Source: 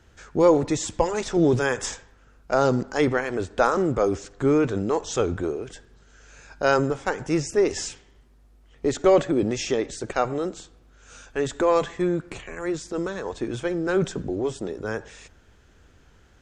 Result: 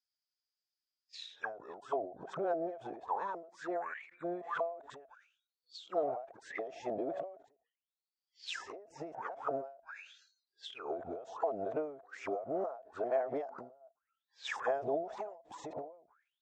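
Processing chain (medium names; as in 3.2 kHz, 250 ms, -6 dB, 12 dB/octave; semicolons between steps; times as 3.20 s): reverse the whole clip; spectral noise reduction 27 dB; compression 5:1, threshold -23 dBFS, peak gain reduction 10.5 dB; auto-wah 670–4900 Hz, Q 17, down, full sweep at -25.5 dBFS; endings held to a fixed fall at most 110 dB/s; trim +15.5 dB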